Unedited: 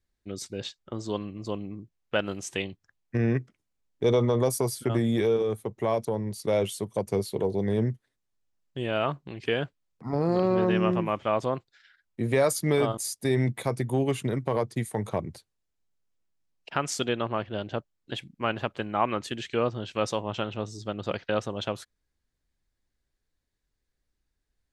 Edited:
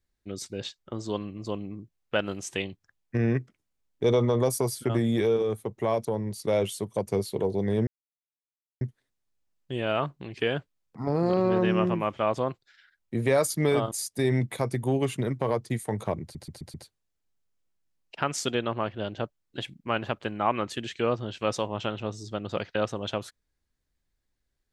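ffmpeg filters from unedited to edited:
ffmpeg -i in.wav -filter_complex "[0:a]asplit=6[link_01][link_02][link_03][link_04][link_05][link_06];[link_01]atrim=end=7.87,asetpts=PTS-STARTPTS,afade=type=out:start_time=7.866:duration=0.004:curve=hsin,apad=pad_dur=0.94[link_07];[link_02]atrim=start=7.87:end=15.412,asetpts=PTS-STARTPTS,afade=type=in:duration=0.004:curve=hsin[link_08];[link_03]atrim=start=15.278:end=15.412[link_09];[link_04]atrim=start=15.278:end=15.412[link_10];[link_05]atrim=start=15.278:end=15.412[link_11];[link_06]atrim=start=15.278[link_12];[link_07][link_08]concat=n=2:v=0:a=1[link_13];[link_13][link_09]acrossfade=duration=0.004:curve1=hsin:curve2=hsin[link_14];[link_14][link_10]acrossfade=duration=0.004:curve1=hsin:curve2=hsin[link_15];[link_15][link_11]acrossfade=duration=0.004:curve1=hsin:curve2=hsin[link_16];[link_16][link_12]acrossfade=duration=0.004:curve1=hsin:curve2=hsin" out.wav

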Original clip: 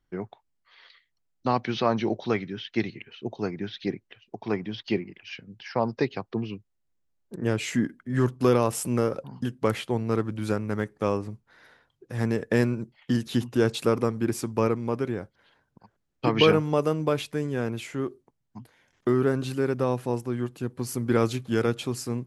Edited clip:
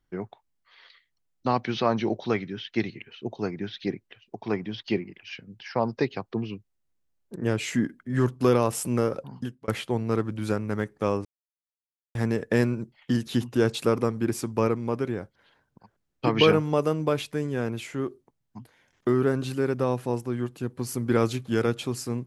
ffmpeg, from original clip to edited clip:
ffmpeg -i in.wav -filter_complex "[0:a]asplit=4[link_01][link_02][link_03][link_04];[link_01]atrim=end=9.68,asetpts=PTS-STARTPTS,afade=type=out:start_time=9.34:duration=0.34[link_05];[link_02]atrim=start=9.68:end=11.25,asetpts=PTS-STARTPTS,afade=type=in:duration=0.004:curve=hsin,afade=type=out:start_time=1.566:duration=0.004:curve=hsin[link_06];[link_03]atrim=start=11.25:end=12.15,asetpts=PTS-STARTPTS,volume=0[link_07];[link_04]atrim=start=12.15,asetpts=PTS-STARTPTS,afade=type=in:duration=0.004:curve=hsin[link_08];[link_05][link_06][link_07][link_08]concat=n=4:v=0:a=1" out.wav

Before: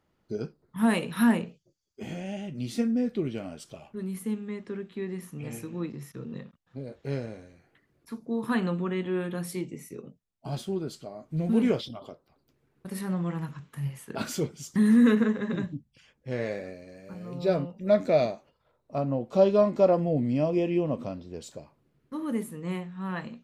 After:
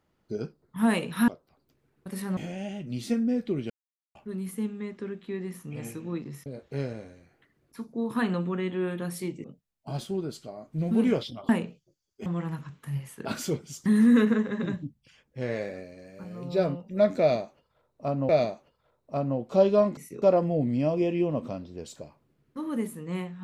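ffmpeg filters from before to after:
ffmpeg -i in.wav -filter_complex "[0:a]asplit=12[link_01][link_02][link_03][link_04][link_05][link_06][link_07][link_08][link_09][link_10][link_11][link_12];[link_01]atrim=end=1.282[link_13];[link_02]atrim=start=12.068:end=13.162[link_14];[link_03]atrim=start=2.048:end=3.38,asetpts=PTS-STARTPTS,afade=type=out:start_time=1.328:duration=0.004:curve=hsin[link_15];[link_04]atrim=start=3.38:end=3.83,asetpts=PTS-STARTPTS,volume=0[link_16];[link_05]atrim=start=3.83:end=6.142,asetpts=PTS-STARTPTS,afade=type=in:duration=0.004:curve=hsin[link_17];[link_06]atrim=start=6.788:end=9.772[link_18];[link_07]atrim=start=10.018:end=12.072[link_19];[link_08]atrim=start=1.278:end=2.052[link_20];[link_09]atrim=start=13.158:end=19.192[link_21];[link_10]atrim=start=18.098:end=19.782[link_22];[link_11]atrim=start=9.768:end=10.022[link_23];[link_12]atrim=start=19.778[link_24];[link_13][link_14]acrossfade=duration=0.004:curve1=hsin:curve2=hsin[link_25];[link_15][link_16][link_17]concat=n=3:v=0:a=1[link_26];[link_25][link_26]acrossfade=duration=0.004:curve1=hsin:curve2=hsin[link_27];[link_27][link_18]acrossfade=duration=0.004:curve1=hsin:curve2=hsin[link_28];[link_28][link_19]acrossfade=duration=0.004:curve1=hsin:curve2=hsin[link_29];[link_29][link_20]acrossfade=duration=0.004:curve1=hsin:curve2=hsin[link_30];[link_30][link_21]acrossfade=duration=0.004:curve1=hsin:curve2=hsin[link_31];[link_31][link_22]acrossfade=duration=0.004:curve1=hsin:curve2=hsin[link_32];[link_32][link_23]acrossfade=duration=0.004:curve1=hsin:curve2=hsin[link_33];[link_33][link_24]acrossfade=duration=0.004:curve1=hsin:curve2=hsin" out.wav

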